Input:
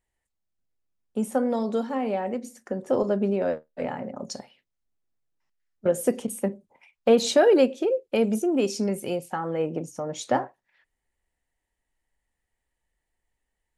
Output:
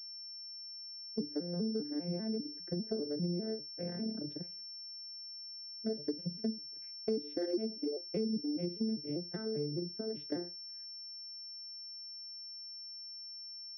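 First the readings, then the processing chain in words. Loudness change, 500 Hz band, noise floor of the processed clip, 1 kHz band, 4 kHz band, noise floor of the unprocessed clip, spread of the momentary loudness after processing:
-13.5 dB, -15.5 dB, -47 dBFS, under -25 dB, -1.0 dB, -82 dBFS, 8 LU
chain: arpeggiated vocoder minor triad, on D3, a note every 0.199 s; EQ curve 170 Hz 0 dB, 380 Hz +7 dB, 1000 Hz -21 dB, 1600 Hz +3 dB; compressor 4:1, threshold -32 dBFS, peak gain reduction 18.5 dB; high shelf 2100 Hz -7.5 dB; pulse-width modulation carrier 5400 Hz; gain -2.5 dB

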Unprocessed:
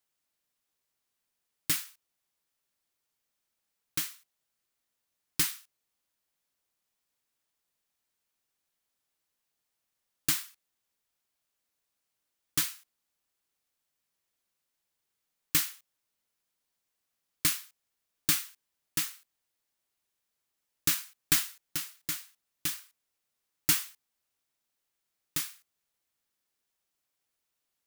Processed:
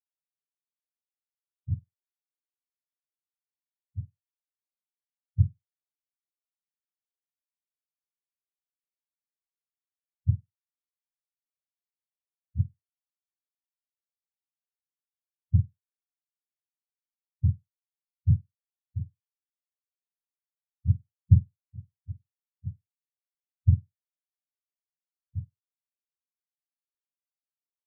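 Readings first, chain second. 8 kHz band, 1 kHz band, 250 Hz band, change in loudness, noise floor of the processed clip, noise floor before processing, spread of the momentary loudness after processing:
under -40 dB, under -40 dB, +5.0 dB, +1.5 dB, under -85 dBFS, -84 dBFS, 19 LU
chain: spectrum mirrored in octaves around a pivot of 760 Hz; air absorption 410 m; spectral expander 2.5:1; gain +4 dB

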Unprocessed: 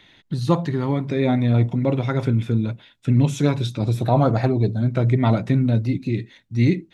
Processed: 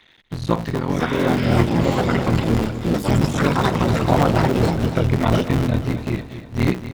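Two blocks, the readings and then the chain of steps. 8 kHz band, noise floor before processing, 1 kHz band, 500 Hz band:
n/a, -57 dBFS, +5.5 dB, +3.0 dB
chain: cycle switcher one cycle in 3, muted; AGC gain up to 3.5 dB; bell 1600 Hz +4 dB 2.8 oct; spectral repair 1.03–1.27, 920–3800 Hz after; echoes that change speed 0.669 s, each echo +6 st, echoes 2; on a send: feedback echo 0.241 s, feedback 54%, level -12 dB; on the sum: gain -2.5 dB

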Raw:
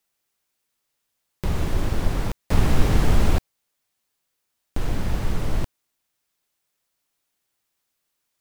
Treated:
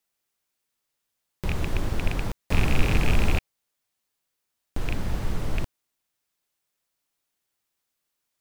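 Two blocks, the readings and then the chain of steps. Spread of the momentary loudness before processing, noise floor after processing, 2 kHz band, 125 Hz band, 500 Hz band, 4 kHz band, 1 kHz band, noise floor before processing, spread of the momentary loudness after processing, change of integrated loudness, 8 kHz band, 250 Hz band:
11 LU, -81 dBFS, +2.5 dB, -3.5 dB, -3.5 dB, -0.5 dB, -3.5 dB, -77 dBFS, 11 LU, -3.0 dB, -3.5 dB, -3.5 dB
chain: rattling part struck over -19 dBFS, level -13 dBFS; gain -3.5 dB

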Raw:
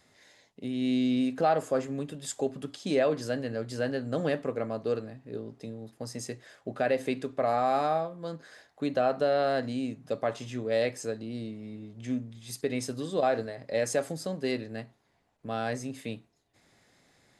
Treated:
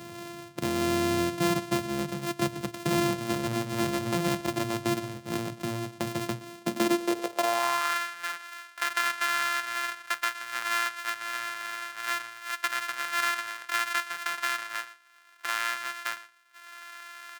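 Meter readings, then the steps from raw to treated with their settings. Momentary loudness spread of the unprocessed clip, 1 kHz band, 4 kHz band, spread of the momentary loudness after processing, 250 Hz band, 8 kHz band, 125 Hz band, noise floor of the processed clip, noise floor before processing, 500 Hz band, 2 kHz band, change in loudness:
15 LU, +2.5 dB, +8.5 dB, 9 LU, +0.5 dB, +6.0 dB, +2.0 dB, -53 dBFS, -70 dBFS, -5.0 dB, +10.0 dB, +1.5 dB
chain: sample sorter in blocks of 128 samples; high-pass sweep 130 Hz -> 1500 Hz, 6.45–7.98; echo 0.119 s -20.5 dB; three-band squash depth 70%

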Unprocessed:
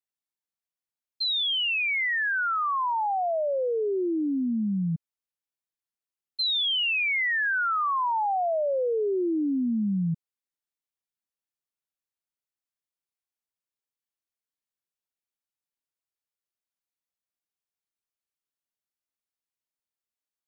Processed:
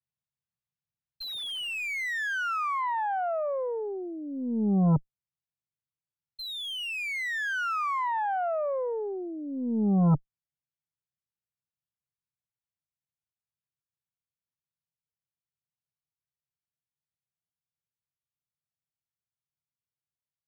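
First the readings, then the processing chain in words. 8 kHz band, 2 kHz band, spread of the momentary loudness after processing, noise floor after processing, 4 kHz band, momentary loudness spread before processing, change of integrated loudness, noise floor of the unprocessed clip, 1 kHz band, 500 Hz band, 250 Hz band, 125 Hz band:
n/a, -5.0 dB, 11 LU, under -85 dBFS, -9.5 dB, 5 LU, -3.5 dB, under -85 dBFS, -3.0 dB, -4.0 dB, -1.0 dB, +5.0 dB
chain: HPF 48 Hz 24 dB/oct; resonant low shelf 210 Hz +13 dB, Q 3; vocal rider within 4 dB 2 s; air absorption 110 m; added harmonics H 3 -29 dB, 5 -18 dB, 7 -44 dB, 8 -18 dB, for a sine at -6.5 dBFS; slew limiter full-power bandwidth 160 Hz; gain -8 dB

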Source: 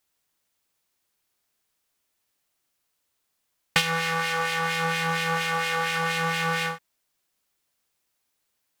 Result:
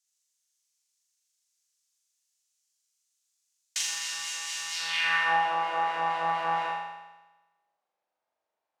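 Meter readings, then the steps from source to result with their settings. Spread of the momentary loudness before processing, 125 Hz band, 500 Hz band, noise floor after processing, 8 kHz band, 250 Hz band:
2 LU, -19.5 dB, -7.5 dB, under -85 dBFS, +2.0 dB, -15.5 dB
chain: tube stage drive 19 dB, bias 0.7; band-pass sweep 6600 Hz -> 730 Hz, 4.7–5.38; on a send: flutter echo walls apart 7.1 m, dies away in 1.1 s; on the sum: gain +7 dB

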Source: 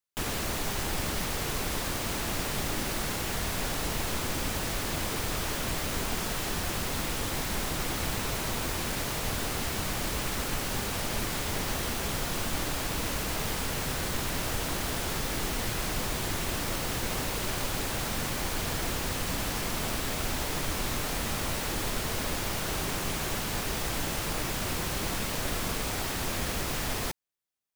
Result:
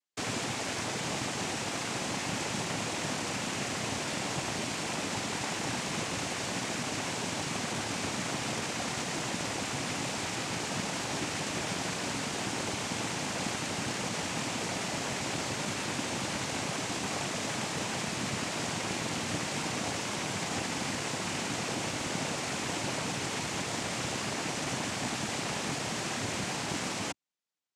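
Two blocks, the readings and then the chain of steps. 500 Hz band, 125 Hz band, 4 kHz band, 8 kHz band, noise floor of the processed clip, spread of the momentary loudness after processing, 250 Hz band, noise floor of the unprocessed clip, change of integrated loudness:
-1.0 dB, -4.0 dB, -1.0 dB, -1.0 dB, -36 dBFS, 0 LU, 0.0 dB, -33 dBFS, -2.0 dB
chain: noise vocoder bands 4

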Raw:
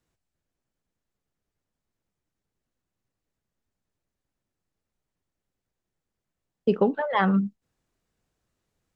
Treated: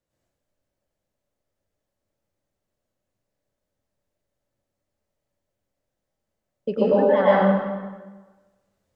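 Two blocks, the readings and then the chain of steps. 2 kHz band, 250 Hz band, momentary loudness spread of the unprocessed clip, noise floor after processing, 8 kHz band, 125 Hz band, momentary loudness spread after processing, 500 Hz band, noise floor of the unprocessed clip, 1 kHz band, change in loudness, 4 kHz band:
+2.0 dB, +1.5 dB, 7 LU, -82 dBFS, n/a, +1.0 dB, 17 LU, +8.5 dB, under -85 dBFS, +4.0 dB, +5.0 dB, +1.0 dB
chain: bell 570 Hz +14 dB 0.3 oct; plate-style reverb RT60 1.3 s, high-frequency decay 0.8×, pre-delay 90 ms, DRR -8.5 dB; gain -7 dB

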